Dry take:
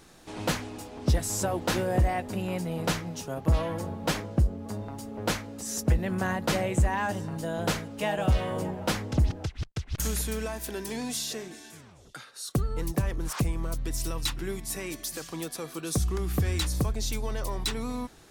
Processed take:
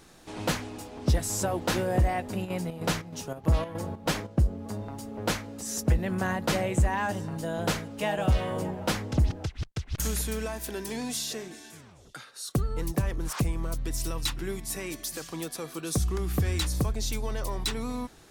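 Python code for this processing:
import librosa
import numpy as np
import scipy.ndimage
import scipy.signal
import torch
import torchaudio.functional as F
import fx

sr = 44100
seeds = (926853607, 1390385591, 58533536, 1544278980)

y = fx.chopper(x, sr, hz=3.2, depth_pct=60, duty_pct=65, at=(2.44, 4.44), fade=0.02)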